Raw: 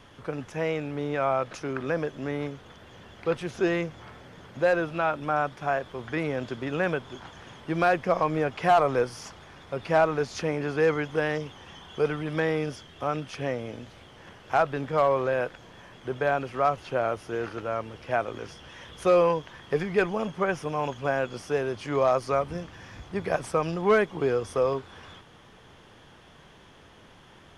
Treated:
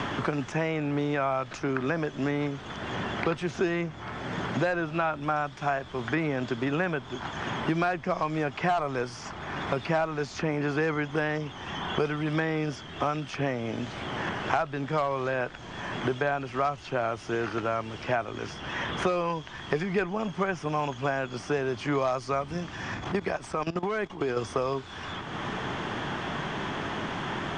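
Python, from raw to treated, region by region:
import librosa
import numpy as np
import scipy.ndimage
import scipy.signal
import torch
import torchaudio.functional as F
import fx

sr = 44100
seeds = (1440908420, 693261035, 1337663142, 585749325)

y = fx.chain(x, sr, fx.dynamic_eq(hz=140.0, q=1.3, threshold_db=-43.0, ratio=4.0, max_db=-5),
    fx.level_steps(step_db=16), at=(22.94, 24.37))
y = scipy.signal.sosfilt(scipy.signal.butter(8, 8500.0, 'lowpass', fs=sr, output='sos'), y)
y = fx.peak_eq(y, sr, hz=500.0, db=-7.5, octaves=0.35)
y = fx.band_squash(y, sr, depth_pct=100)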